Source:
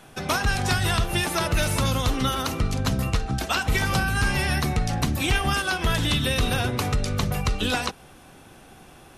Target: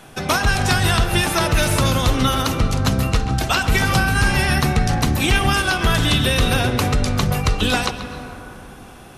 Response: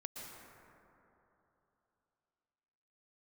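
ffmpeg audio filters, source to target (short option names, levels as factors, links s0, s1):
-filter_complex "[0:a]asplit=2[s0][s1];[1:a]atrim=start_sample=2205,lowpass=6200,adelay=134[s2];[s1][s2]afir=irnorm=-1:irlink=0,volume=0.447[s3];[s0][s3]amix=inputs=2:normalize=0,volume=1.88"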